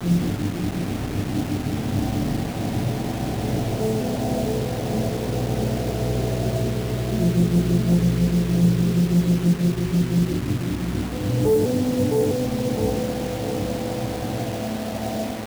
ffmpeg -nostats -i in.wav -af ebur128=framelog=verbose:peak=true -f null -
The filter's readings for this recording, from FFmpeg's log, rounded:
Integrated loudness:
  I:         -23.0 LUFS
  Threshold: -33.0 LUFS
Loudness range:
  LRA:         4.9 LU
  Threshold: -42.6 LUFS
  LRA low:   -25.0 LUFS
  LRA high:  -20.1 LUFS
True peak:
  Peak:       -9.5 dBFS